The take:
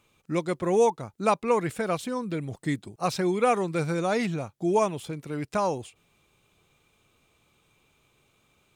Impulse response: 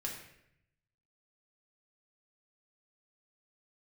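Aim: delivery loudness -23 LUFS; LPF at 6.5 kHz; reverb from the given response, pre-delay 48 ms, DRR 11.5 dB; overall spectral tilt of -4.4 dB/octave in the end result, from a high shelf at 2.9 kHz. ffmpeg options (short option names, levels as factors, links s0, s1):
-filter_complex "[0:a]lowpass=6500,highshelf=f=2900:g=-6.5,asplit=2[s0][s1];[1:a]atrim=start_sample=2205,adelay=48[s2];[s1][s2]afir=irnorm=-1:irlink=0,volume=0.251[s3];[s0][s3]amix=inputs=2:normalize=0,volume=1.68"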